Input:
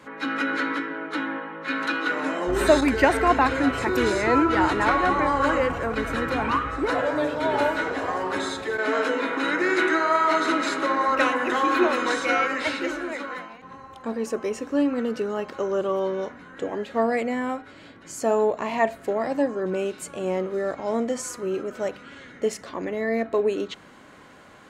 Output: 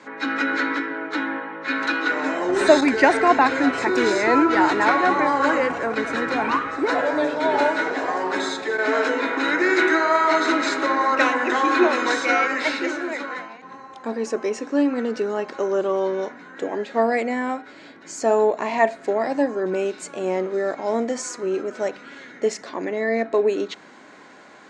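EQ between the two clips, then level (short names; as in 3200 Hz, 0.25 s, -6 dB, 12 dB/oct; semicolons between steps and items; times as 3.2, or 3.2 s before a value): speaker cabinet 260–7400 Hz, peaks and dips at 520 Hz -4 dB, 1200 Hz -5 dB, 3000 Hz -6 dB; +5.0 dB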